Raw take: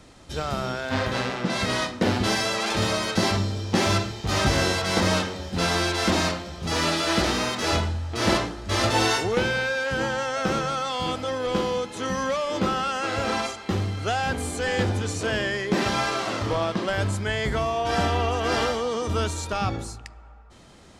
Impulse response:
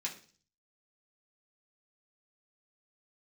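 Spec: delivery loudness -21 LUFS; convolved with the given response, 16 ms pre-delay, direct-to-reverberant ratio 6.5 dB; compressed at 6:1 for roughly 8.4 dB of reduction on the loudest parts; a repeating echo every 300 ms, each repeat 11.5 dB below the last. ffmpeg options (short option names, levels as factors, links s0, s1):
-filter_complex "[0:a]acompressor=threshold=0.0501:ratio=6,aecho=1:1:300|600|900:0.266|0.0718|0.0194,asplit=2[s0][s1];[1:a]atrim=start_sample=2205,adelay=16[s2];[s1][s2]afir=irnorm=-1:irlink=0,volume=0.422[s3];[s0][s3]amix=inputs=2:normalize=0,volume=2.51"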